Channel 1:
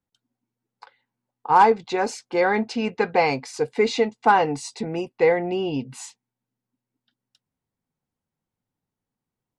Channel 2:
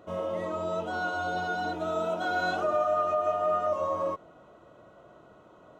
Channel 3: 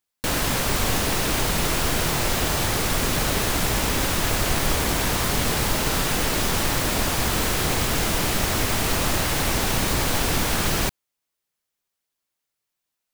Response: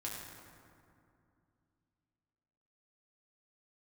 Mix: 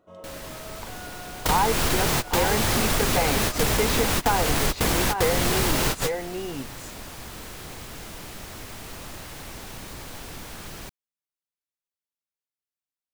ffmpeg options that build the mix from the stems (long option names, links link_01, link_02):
-filter_complex "[0:a]volume=2dB,asplit=3[link_01][link_02][link_03];[link_02]volume=-10dB[link_04];[1:a]volume=-11.5dB[link_05];[2:a]acontrast=83,volume=0dB[link_06];[link_03]apad=whole_len=579083[link_07];[link_06][link_07]sidechaingate=range=-23dB:threshold=-34dB:ratio=16:detection=peak[link_08];[link_04]aecho=0:1:822:1[link_09];[link_01][link_05][link_08][link_09]amix=inputs=4:normalize=0,acompressor=threshold=-21dB:ratio=3"